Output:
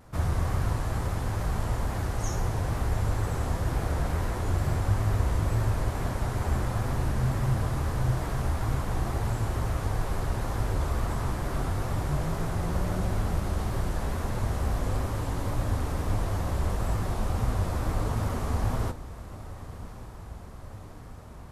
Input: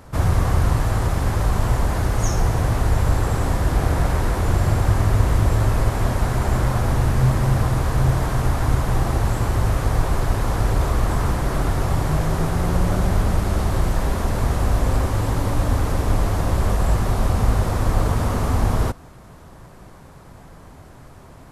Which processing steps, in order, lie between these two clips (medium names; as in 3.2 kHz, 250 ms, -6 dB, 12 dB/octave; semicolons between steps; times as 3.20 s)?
flange 1.6 Hz, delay 7.7 ms, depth 7 ms, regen +67%; vibrato 2.2 Hz 52 cents; echo that smears into a reverb 1203 ms, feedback 71%, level -16 dB; trim -4.5 dB